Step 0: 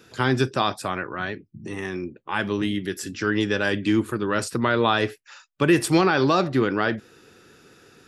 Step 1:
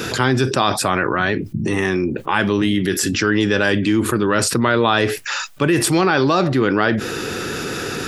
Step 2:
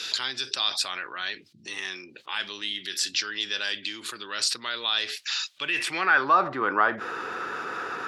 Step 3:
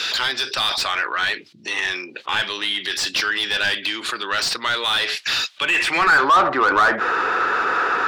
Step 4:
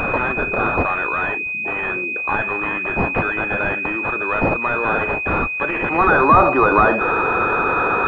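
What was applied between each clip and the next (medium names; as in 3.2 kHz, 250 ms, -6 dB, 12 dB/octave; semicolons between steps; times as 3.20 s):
level flattener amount 70%
band-pass sweep 4.1 kHz -> 1.1 kHz, 5.48–6.39 s; trim +2 dB
overdrive pedal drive 23 dB, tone 2 kHz, clips at -5.5 dBFS
class-D stage that switches slowly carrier 2.5 kHz; trim +6.5 dB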